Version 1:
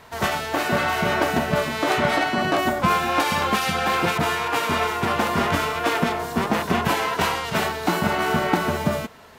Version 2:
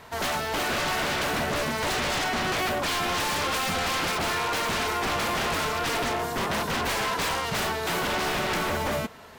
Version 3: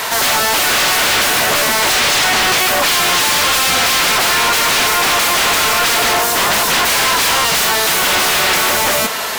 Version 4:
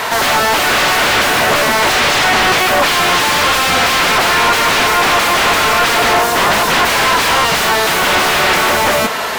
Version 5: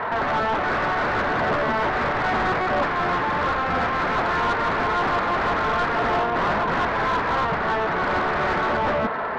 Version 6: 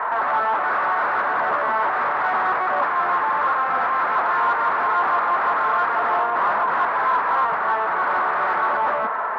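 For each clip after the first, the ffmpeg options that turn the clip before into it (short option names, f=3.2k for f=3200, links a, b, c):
-af "aeval=exprs='0.0794*(abs(mod(val(0)/0.0794+3,4)-2)-1)':c=same"
-filter_complex "[0:a]crystalizer=i=3:c=0,asplit=2[a][b];[b]highpass=f=720:p=1,volume=35dB,asoftclip=type=tanh:threshold=-5.5dB[c];[a][c]amix=inputs=2:normalize=0,lowpass=f=7.3k:p=1,volume=-6dB,volume=-1dB"
-af "highshelf=f=3.8k:g=-11,volume=4.5dB"
-filter_complex "[0:a]lowpass=f=1.7k:w=0.5412,lowpass=f=1.7k:w=1.3066,acrossover=split=270[a][b];[b]asoftclip=type=tanh:threshold=-13.5dB[c];[a][c]amix=inputs=2:normalize=0,volume=-5dB"
-af "bandpass=f=1.1k:t=q:w=1.6:csg=0,volume=5dB"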